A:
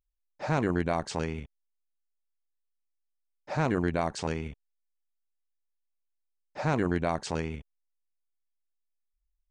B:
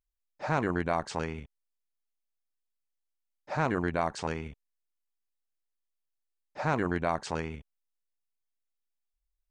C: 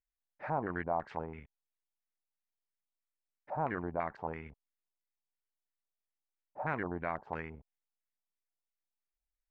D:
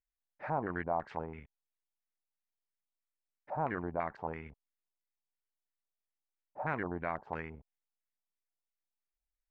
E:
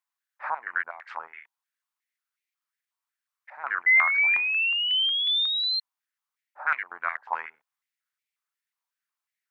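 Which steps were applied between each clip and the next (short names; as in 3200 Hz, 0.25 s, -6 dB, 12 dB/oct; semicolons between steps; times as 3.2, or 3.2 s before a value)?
dynamic EQ 1200 Hz, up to +6 dB, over -42 dBFS, Q 0.72; gain -3.5 dB
LFO low-pass square 3 Hz 840–2000 Hz; gain -9 dB
nothing audible
painted sound rise, 3.86–5.8, 2000–4200 Hz -32 dBFS; stepped high-pass 5.5 Hz 990–2200 Hz; gain +4.5 dB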